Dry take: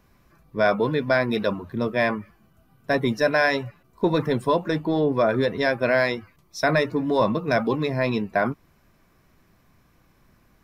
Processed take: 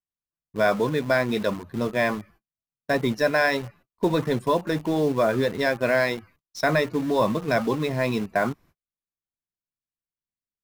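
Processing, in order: gate -49 dBFS, range -41 dB; in parallel at -8 dB: bit crusher 5-bit; on the sum: trim -4 dB

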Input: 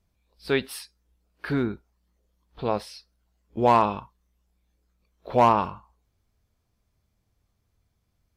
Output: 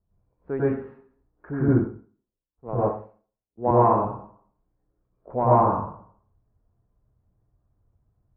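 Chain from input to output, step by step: Bessel low-pass 900 Hz, order 6; plate-style reverb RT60 0.57 s, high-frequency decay 0.9×, pre-delay 85 ms, DRR -7.5 dB; 1.68–3.71 s: three bands expanded up and down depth 100%; trim -4.5 dB

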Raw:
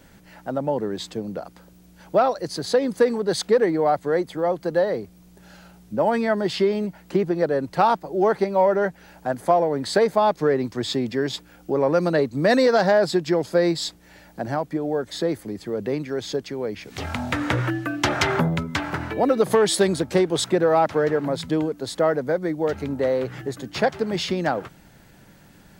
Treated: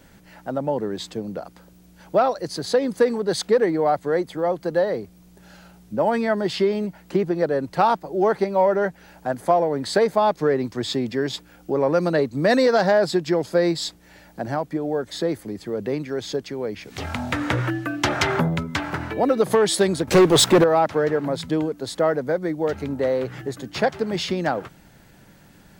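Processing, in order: 20.07–20.64 s: waveshaping leveller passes 3

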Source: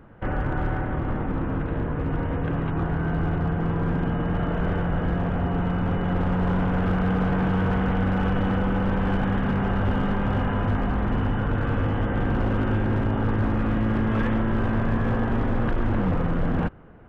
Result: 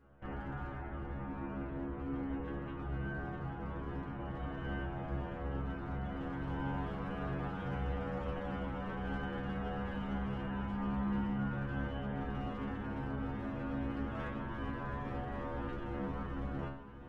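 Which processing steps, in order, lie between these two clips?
inharmonic resonator 67 Hz, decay 0.65 s, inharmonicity 0.002; on a send: echo that smears into a reverb 633 ms, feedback 77%, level -15.5 dB; on the sum: trim -2.5 dB

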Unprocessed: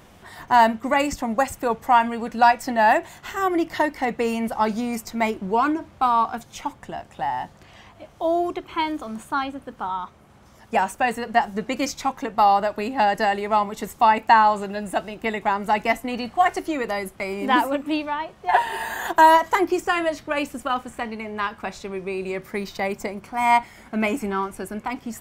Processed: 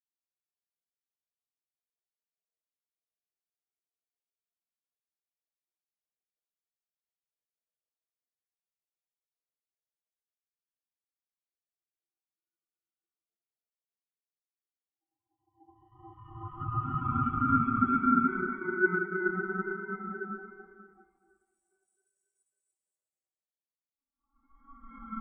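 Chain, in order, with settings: Paulstretch 33×, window 0.10 s, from 10.24 s; ring modulator 560 Hz; spectral contrast expander 2.5:1; trim -5.5 dB

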